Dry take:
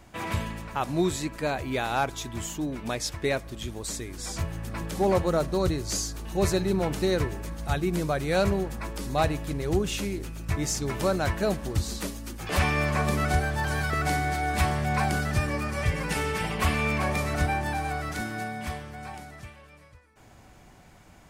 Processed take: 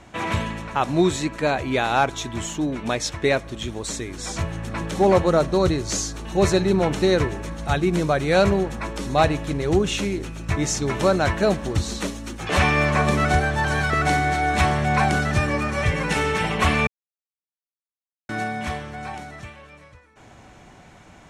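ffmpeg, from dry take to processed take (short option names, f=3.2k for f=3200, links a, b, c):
-filter_complex "[0:a]asplit=3[a][b][c];[a]atrim=end=16.87,asetpts=PTS-STARTPTS,afade=t=out:st=16.866:d=0.004:c=hsin[d];[b]atrim=start=16.87:end=18.29,asetpts=PTS-STARTPTS,volume=0[e];[c]atrim=start=18.29,asetpts=PTS-STARTPTS,afade=t=in:d=0.004:c=hsin[f];[d][e][f]concat=n=3:v=0:a=1,lowpass=7.1k,lowshelf=f=79:g=-7.5,bandreject=f=4.8k:w=8.4,volume=7dB"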